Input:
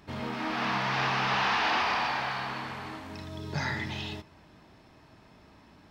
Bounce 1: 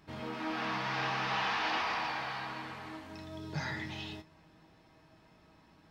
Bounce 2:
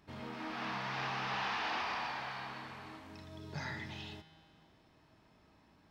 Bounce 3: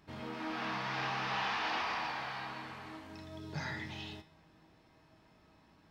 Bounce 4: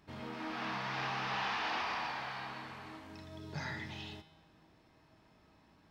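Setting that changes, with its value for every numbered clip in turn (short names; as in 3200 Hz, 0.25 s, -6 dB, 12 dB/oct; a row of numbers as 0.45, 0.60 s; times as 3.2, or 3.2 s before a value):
resonator, decay: 0.15, 2.1, 0.46, 0.97 s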